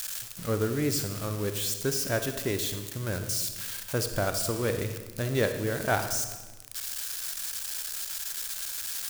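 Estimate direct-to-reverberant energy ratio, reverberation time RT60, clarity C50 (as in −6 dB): 7.5 dB, 1.2 s, 8.0 dB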